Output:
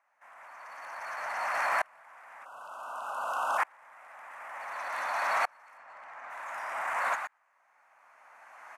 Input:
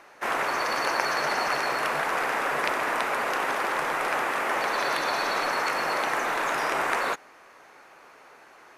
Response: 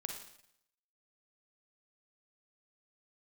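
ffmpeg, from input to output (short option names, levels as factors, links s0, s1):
-filter_complex "[0:a]asplit=2[s0][s1];[s1]acompressor=threshold=0.0112:ratio=5,volume=1[s2];[s0][s2]amix=inputs=2:normalize=0,highpass=130,aeval=exprs='clip(val(0),-1,0.1)':c=same,lowshelf=f=490:t=q:w=3:g=-7.5,asplit=2[s3][s4];[s4]asplit=5[s5][s6][s7][s8][s9];[s5]adelay=117,afreqshift=100,volume=0.168[s10];[s6]adelay=234,afreqshift=200,volume=0.0841[s11];[s7]adelay=351,afreqshift=300,volume=0.0422[s12];[s8]adelay=468,afreqshift=400,volume=0.0209[s13];[s9]adelay=585,afreqshift=500,volume=0.0105[s14];[s10][s11][s12][s13][s14]amix=inputs=5:normalize=0[s15];[s3][s15]amix=inputs=2:normalize=0,asplit=3[s16][s17][s18];[s16]afade=t=out:st=5.77:d=0.02[s19];[s17]adynamicsmooth=sensitivity=2:basefreq=2700,afade=t=in:st=5.77:d=0.02,afade=t=out:st=6.29:d=0.02[s20];[s18]afade=t=in:st=6.29:d=0.02[s21];[s19][s20][s21]amix=inputs=3:normalize=0,equalizer=f=250:t=o:w=1:g=4,equalizer=f=500:t=o:w=1:g=-4,equalizer=f=1000:t=o:w=1:g=7,equalizer=f=2000:t=o:w=1:g=8,equalizer=f=4000:t=o:w=1:g=-7,equalizer=f=8000:t=o:w=1:g=6,alimiter=limit=0.2:level=0:latency=1:release=23,asplit=3[s22][s23][s24];[s22]afade=t=out:st=2.44:d=0.02[s25];[s23]asuperstop=centerf=2000:order=20:qfactor=1.9,afade=t=in:st=2.44:d=0.02,afade=t=out:st=3.57:d=0.02[s26];[s24]afade=t=in:st=3.57:d=0.02[s27];[s25][s26][s27]amix=inputs=3:normalize=0,aeval=exprs='val(0)*pow(10,-33*if(lt(mod(-0.55*n/s,1),2*abs(-0.55)/1000),1-mod(-0.55*n/s,1)/(2*abs(-0.55)/1000),(mod(-0.55*n/s,1)-2*abs(-0.55)/1000)/(1-2*abs(-0.55)/1000))/20)':c=same,volume=0.631"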